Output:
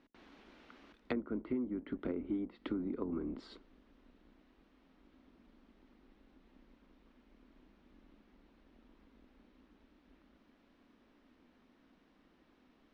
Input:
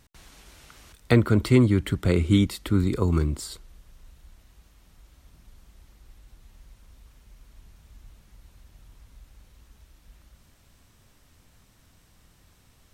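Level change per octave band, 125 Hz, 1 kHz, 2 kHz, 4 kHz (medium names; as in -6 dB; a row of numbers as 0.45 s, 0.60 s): -30.0 dB, -15.5 dB, -18.5 dB, -22.0 dB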